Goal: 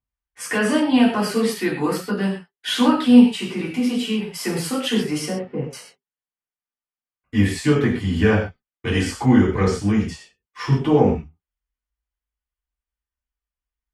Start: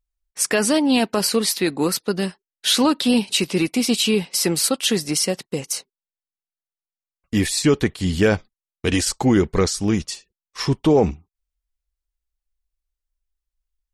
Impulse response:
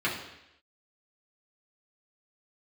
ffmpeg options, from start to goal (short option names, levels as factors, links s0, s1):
-filter_complex "[0:a]asettb=1/sr,asplit=3[s0][s1][s2];[s0]atrim=end=3.274[s3];[s1]atrim=start=3.27:end=4.32,asetpts=PTS-STARTPTS,afade=t=in:d=0.004:c=qsin,afade=t=out:st=1.046:d=0.004:c=qsin,acompressor=threshold=0.1:ratio=6[s4];[s2]atrim=start=4.316[s5];[s3][s4]acrossfade=d=0.004:c1=hsin:c2=qsin[s6];[s6][s5]acrossfade=d=0.004:c1=qsin:c2=hsin,asettb=1/sr,asplit=3[s7][s8][s9];[s7]atrim=end=5.284[s10];[s8]atrim=start=5.28:end=5.73,asetpts=PTS-STARTPTS,afade=t=in:d=0.004:c=qsin,afade=t=out:st=0.446:d=0.004:c=qsin,lowpass=1400[s11];[s9]atrim=start=5.726[s12];[s10][s11]acrossfade=d=0.004:c1=hsin:c2=qsin[s13];[s13][s12]acrossfade=d=0.004:c1=qsin:c2=hsin[s14];[1:a]atrim=start_sample=2205,atrim=end_sample=4410,asetrate=30429,aresample=44100[s15];[s14][s15]afir=irnorm=-1:irlink=0,volume=0.251"